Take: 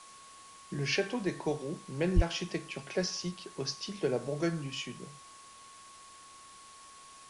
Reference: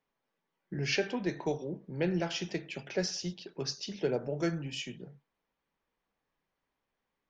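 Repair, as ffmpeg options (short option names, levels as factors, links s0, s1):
-filter_complex "[0:a]bandreject=f=1100:w=30,asplit=3[s0][s1][s2];[s0]afade=t=out:st=2.15:d=0.02[s3];[s1]highpass=f=140:w=0.5412,highpass=f=140:w=1.3066,afade=t=in:st=2.15:d=0.02,afade=t=out:st=2.27:d=0.02[s4];[s2]afade=t=in:st=2.27:d=0.02[s5];[s3][s4][s5]amix=inputs=3:normalize=0,afwtdn=0.0022"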